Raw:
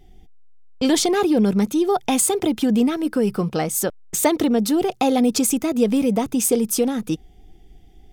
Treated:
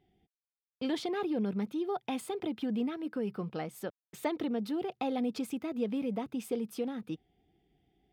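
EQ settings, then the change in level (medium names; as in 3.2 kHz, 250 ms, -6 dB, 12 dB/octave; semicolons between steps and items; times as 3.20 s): high-pass 110 Hz 12 dB/octave; distance through air 410 m; pre-emphasis filter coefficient 0.8; 0.0 dB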